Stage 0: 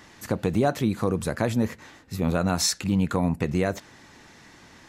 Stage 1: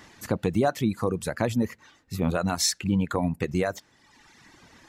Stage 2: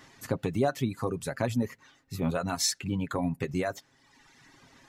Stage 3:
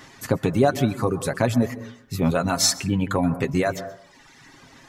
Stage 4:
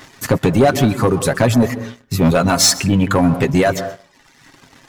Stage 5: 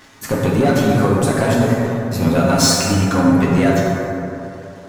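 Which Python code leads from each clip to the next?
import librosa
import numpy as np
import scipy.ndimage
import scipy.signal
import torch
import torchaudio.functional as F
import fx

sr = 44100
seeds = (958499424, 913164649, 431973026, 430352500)

y1 = fx.dereverb_blind(x, sr, rt60_s=1.2)
y2 = y1 + 0.5 * np.pad(y1, (int(7.4 * sr / 1000.0), 0))[:len(y1)]
y2 = y2 * 10.0 ** (-4.5 / 20.0)
y3 = fx.rev_plate(y2, sr, seeds[0], rt60_s=0.65, hf_ratio=0.25, predelay_ms=115, drr_db=13.0)
y3 = y3 * 10.0 ** (8.0 / 20.0)
y4 = fx.leveller(y3, sr, passes=2)
y4 = y4 * 10.0 ** (2.0 / 20.0)
y5 = fx.rev_plate(y4, sr, seeds[1], rt60_s=3.0, hf_ratio=0.4, predelay_ms=0, drr_db=-4.0)
y5 = y5 * 10.0 ** (-6.0 / 20.0)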